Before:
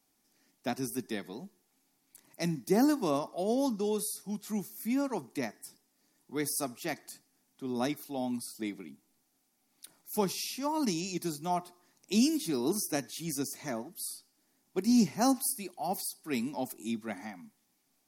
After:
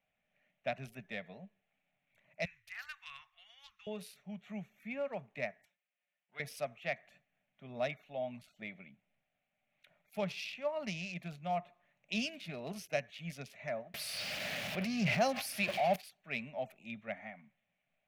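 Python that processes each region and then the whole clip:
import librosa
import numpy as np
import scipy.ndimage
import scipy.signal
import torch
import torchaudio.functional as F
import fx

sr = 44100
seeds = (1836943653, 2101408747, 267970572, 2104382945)

y = fx.chain(x, sr, fx.cheby2_bandstop(low_hz=170.0, high_hz=630.0, order=4, stop_db=50),
    fx.high_shelf(hz=11000.0, db=2.5), at=(2.45, 3.87))
y = fx.chain(y, sr, fx.law_mismatch(coded='A'),
    fx.highpass(hz=1100.0, slope=6),
    fx.comb(ms=5.6, depth=0.4), at=(5.65, 6.4))
y = fx.chain(y, sr, fx.zero_step(step_db=-38.5),
    fx.highpass(hz=83.0, slope=12),
    fx.env_flatten(amount_pct=50), at=(13.94, 15.96))
y = fx.wiener(y, sr, points=9)
y = fx.curve_eq(y, sr, hz=(180.0, 330.0, 600.0, 920.0, 2500.0, 8500.0), db=(0, -22, 8, -9, 10, -15))
y = y * 10.0 ** (-3.5 / 20.0)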